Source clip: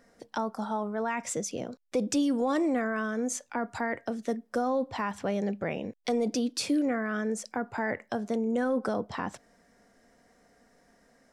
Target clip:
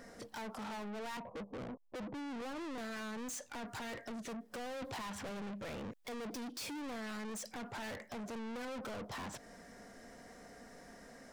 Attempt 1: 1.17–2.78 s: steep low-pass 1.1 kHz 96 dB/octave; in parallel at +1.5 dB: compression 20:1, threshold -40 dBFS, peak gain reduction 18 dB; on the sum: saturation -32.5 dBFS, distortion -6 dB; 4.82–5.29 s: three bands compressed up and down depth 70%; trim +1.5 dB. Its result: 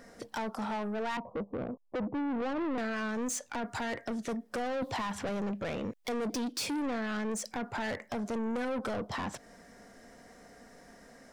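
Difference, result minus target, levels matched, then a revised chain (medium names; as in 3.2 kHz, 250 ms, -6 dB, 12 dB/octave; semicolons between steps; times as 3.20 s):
saturation: distortion -4 dB
1.17–2.78 s: steep low-pass 1.1 kHz 96 dB/octave; in parallel at +1.5 dB: compression 20:1, threshold -40 dBFS, peak gain reduction 18 dB; on the sum: saturation -43.5 dBFS, distortion -2 dB; 4.82–5.29 s: three bands compressed up and down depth 70%; trim +1.5 dB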